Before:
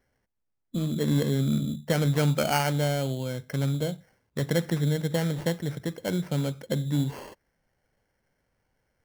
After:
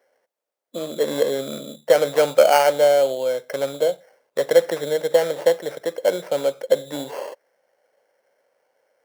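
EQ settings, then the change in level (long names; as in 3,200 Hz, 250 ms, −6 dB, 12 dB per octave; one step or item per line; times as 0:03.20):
high-pass with resonance 540 Hz, resonance Q 3.7
+5.0 dB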